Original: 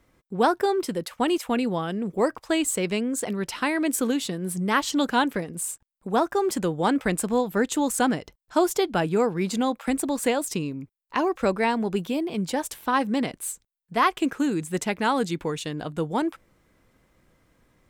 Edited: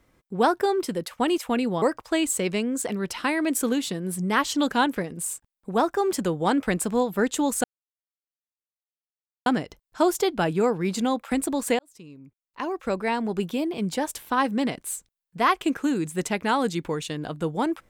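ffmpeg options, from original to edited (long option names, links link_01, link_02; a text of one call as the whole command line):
ffmpeg -i in.wav -filter_complex "[0:a]asplit=4[link_01][link_02][link_03][link_04];[link_01]atrim=end=1.822[link_05];[link_02]atrim=start=2.198:end=8.02,asetpts=PTS-STARTPTS,afade=type=out:start_time=5.818:duration=0.004:curve=hsin,apad=pad_dur=1.82[link_06];[link_03]atrim=start=8.02:end=10.35,asetpts=PTS-STARTPTS,afade=type=in:duration=0.004:curve=hsin,afade=type=out:start_time=2.326:duration=0.004:curve=hsin[link_07];[link_04]atrim=start=10.35,asetpts=PTS-STARTPTS,afade=type=in:duration=1.74[link_08];[link_06][link_07][link_08]concat=n=3:v=0:a=1[link_09];[link_05][link_09]acrossfade=duration=0.004:curve1=hsin:curve2=hsin" out.wav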